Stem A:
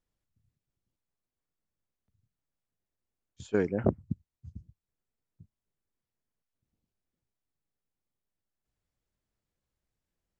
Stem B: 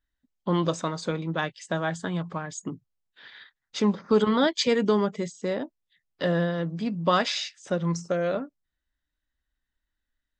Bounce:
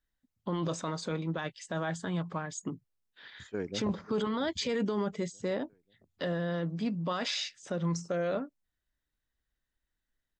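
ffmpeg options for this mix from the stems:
ffmpeg -i stem1.wav -i stem2.wav -filter_complex "[0:a]volume=-7.5dB,asplit=2[link_01][link_02];[link_02]volume=-18dB[link_03];[1:a]volume=-3dB[link_04];[link_03]aecho=0:1:538|1076|1614|2152|2690|3228|3766|4304:1|0.54|0.292|0.157|0.085|0.0459|0.0248|0.0134[link_05];[link_01][link_04][link_05]amix=inputs=3:normalize=0,alimiter=limit=-23.5dB:level=0:latency=1:release=10" out.wav

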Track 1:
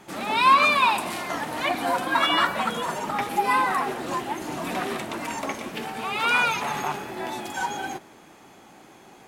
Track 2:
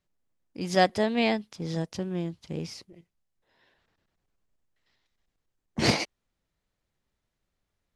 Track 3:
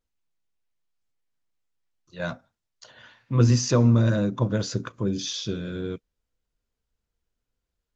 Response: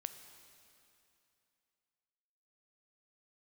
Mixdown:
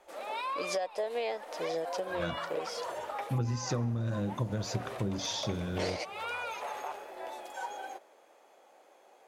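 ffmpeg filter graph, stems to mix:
-filter_complex "[0:a]alimiter=limit=-16dB:level=0:latency=1:release=138,volume=-14dB[link_01];[1:a]aecho=1:1:6.6:0.3,volume=0dB[link_02];[2:a]equalizer=frequency=70:width_type=o:width=0.81:gain=10.5,volume=-6dB,asplit=2[link_03][link_04];[link_04]volume=-8.5dB[link_05];[link_01][link_02]amix=inputs=2:normalize=0,highpass=frequency=540:width_type=q:width=3.9,acompressor=threshold=-30dB:ratio=4,volume=0dB[link_06];[3:a]atrim=start_sample=2205[link_07];[link_05][link_07]afir=irnorm=-1:irlink=0[link_08];[link_03][link_06][link_08]amix=inputs=3:normalize=0,acompressor=threshold=-28dB:ratio=16"

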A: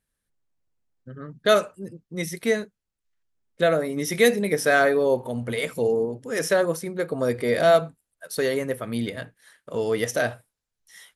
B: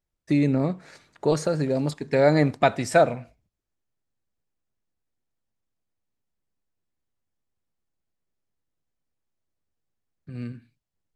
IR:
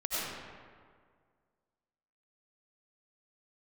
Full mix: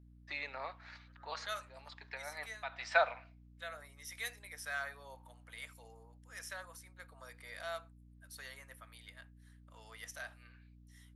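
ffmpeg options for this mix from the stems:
-filter_complex "[0:a]bandreject=frequency=50:width_type=h:width=6,bandreject=frequency=100:width_type=h:width=6,bandreject=frequency=150:width_type=h:width=6,bandreject=frequency=200:width_type=h:width=6,volume=-17.5dB,asplit=2[link_01][link_02];[1:a]lowpass=frequency=4400:width=0.5412,lowpass=frequency=4400:width=1.3066,volume=-3dB[link_03];[link_02]apad=whole_len=491960[link_04];[link_03][link_04]sidechaincompress=threshold=-58dB:ratio=8:attack=6:release=197[link_05];[link_01][link_05]amix=inputs=2:normalize=0,highpass=frequency=870:width=0.5412,highpass=frequency=870:width=1.3066,aeval=exprs='val(0)+0.00126*(sin(2*PI*60*n/s)+sin(2*PI*2*60*n/s)/2+sin(2*PI*3*60*n/s)/3+sin(2*PI*4*60*n/s)/4+sin(2*PI*5*60*n/s)/5)':channel_layout=same"

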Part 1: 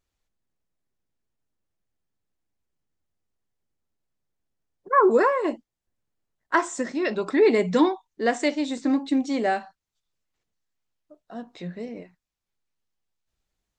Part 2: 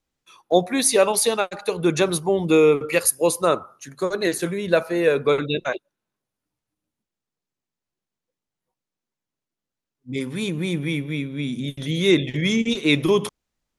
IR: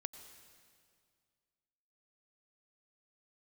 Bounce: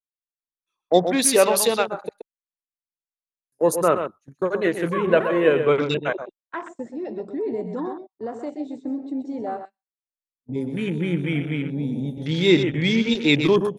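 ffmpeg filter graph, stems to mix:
-filter_complex "[0:a]alimiter=limit=-16dB:level=0:latency=1,volume=-4.5dB,asplit=2[link_01][link_02];[link_02]volume=-8dB[link_03];[1:a]adelay=400,volume=0.5dB,asplit=3[link_04][link_05][link_06];[link_04]atrim=end=2.09,asetpts=PTS-STARTPTS,afade=type=out:start_time=2.086:duration=0.004:curve=hsin[link_07];[link_05]atrim=start=2.09:end=3.52,asetpts=PTS-STARTPTS,volume=0[link_08];[link_06]atrim=start=3.52,asetpts=PTS-STARTPTS,afade=type=in:duration=0.004:curve=hsin[link_09];[link_07][link_08][link_09]concat=n=3:v=0:a=1,asplit=2[link_10][link_11];[link_11]volume=-8.5dB[link_12];[link_03][link_12]amix=inputs=2:normalize=0,aecho=0:1:126:1[link_13];[link_01][link_10][link_13]amix=inputs=3:normalize=0,afwtdn=0.0251,agate=range=-16dB:threshold=-39dB:ratio=16:detection=peak"

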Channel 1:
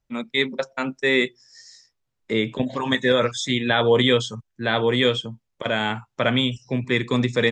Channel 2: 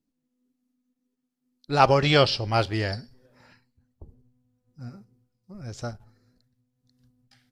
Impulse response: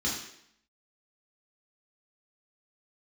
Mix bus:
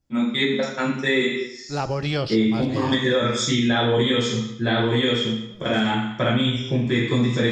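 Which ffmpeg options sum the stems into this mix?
-filter_complex "[0:a]volume=0.5dB,asplit=2[link_01][link_02];[link_02]volume=-5dB[link_03];[1:a]acrossover=split=460[link_04][link_05];[link_05]acompressor=threshold=-21dB:ratio=6[link_06];[link_04][link_06]amix=inputs=2:normalize=0,volume=-3.5dB,asplit=2[link_07][link_08];[link_08]volume=-21.5dB[link_09];[2:a]atrim=start_sample=2205[link_10];[link_03][link_09]amix=inputs=2:normalize=0[link_11];[link_11][link_10]afir=irnorm=-1:irlink=0[link_12];[link_01][link_07][link_12]amix=inputs=3:normalize=0,acompressor=threshold=-18dB:ratio=3"

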